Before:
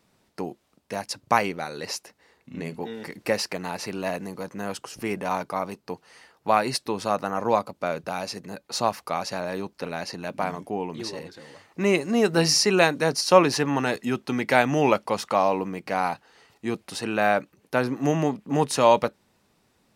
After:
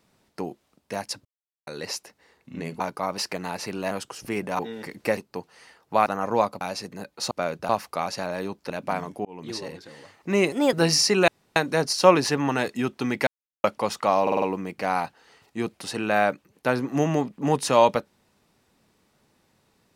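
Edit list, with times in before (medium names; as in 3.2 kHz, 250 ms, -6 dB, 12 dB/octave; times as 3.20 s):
1.25–1.67 s: mute
2.80–3.38 s: swap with 5.33–5.71 s
4.11–4.65 s: delete
6.60–7.20 s: delete
7.75–8.13 s: move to 8.83 s
9.84–10.21 s: delete
10.76–11.02 s: fade in
12.03–12.29 s: speed 124%
12.84 s: insert room tone 0.28 s
14.55–14.92 s: mute
15.50 s: stutter 0.05 s, 5 plays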